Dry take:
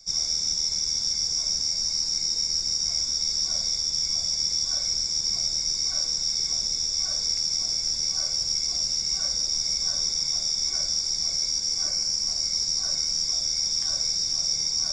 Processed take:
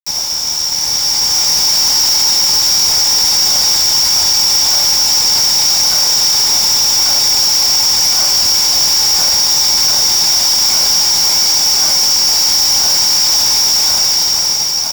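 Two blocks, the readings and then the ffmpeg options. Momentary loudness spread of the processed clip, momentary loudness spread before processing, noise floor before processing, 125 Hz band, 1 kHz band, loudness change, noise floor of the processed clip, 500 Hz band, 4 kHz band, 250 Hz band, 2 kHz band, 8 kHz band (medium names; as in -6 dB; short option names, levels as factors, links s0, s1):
2 LU, 1 LU, -30 dBFS, +11.5 dB, +26.0 dB, +15.0 dB, -16 dBFS, +18.0 dB, +14.5 dB, no reading, +21.5 dB, +15.5 dB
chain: -filter_complex "[0:a]highshelf=f=2200:g=6,bandreject=f=194.8:t=h:w=4,bandreject=f=389.6:t=h:w=4,bandreject=f=584.4:t=h:w=4,bandreject=f=779.2:t=h:w=4,bandreject=f=974:t=h:w=4,bandreject=f=1168.8:t=h:w=4,bandreject=f=1363.6:t=h:w=4,bandreject=f=1558.4:t=h:w=4,bandreject=f=1753.2:t=h:w=4,bandreject=f=1948:t=h:w=4,bandreject=f=2142.8:t=h:w=4,bandreject=f=2337.6:t=h:w=4,bandreject=f=2532.4:t=h:w=4,bandreject=f=2727.2:t=h:w=4,acrossover=split=340|2100[s0][s1][s2];[s2]asoftclip=type=tanh:threshold=0.106[s3];[s0][s1][s3]amix=inputs=3:normalize=0,highpass=60,asplit=2[s4][s5];[s5]aecho=0:1:213:0.2[s6];[s4][s6]amix=inputs=2:normalize=0,acrusher=bits=4:mix=0:aa=0.000001,equalizer=f=860:w=4.3:g=12.5,dynaudnorm=f=210:g=11:m=2.51,apsyclip=5.31,volume=0.398"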